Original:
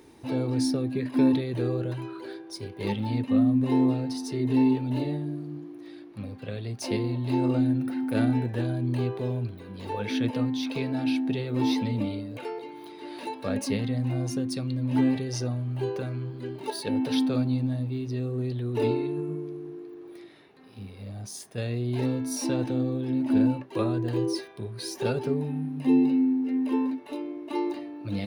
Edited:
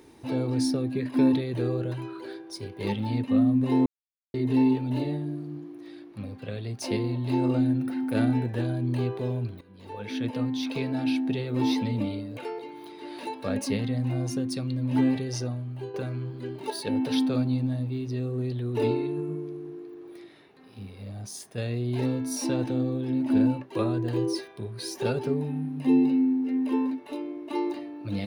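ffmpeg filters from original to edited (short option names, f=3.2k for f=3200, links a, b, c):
-filter_complex "[0:a]asplit=5[a][b][c][d][e];[a]atrim=end=3.86,asetpts=PTS-STARTPTS,afade=t=out:st=3.856:d=0.004:c=hsin[f];[b]atrim=start=3.86:end=4.34,asetpts=PTS-STARTPTS,volume=0[g];[c]atrim=start=4.34:end=9.61,asetpts=PTS-STARTPTS,afade=t=in:d=0.004:c=hsin,afade=t=out:st=5.266:d=0.004:c=hsin:silence=0.188365[h];[d]atrim=start=9.61:end=15.94,asetpts=PTS-STARTPTS,afade=t=in:d=1.02:silence=0.188365,afade=t=out:st=5.7:d=0.63:silence=0.334965[i];[e]atrim=start=15.94,asetpts=PTS-STARTPTS,afade=t=in:d=0.004:c=hsin:silence=0.334965[j];[f][g][h][i][j]concat=n=5:v=0:a=1"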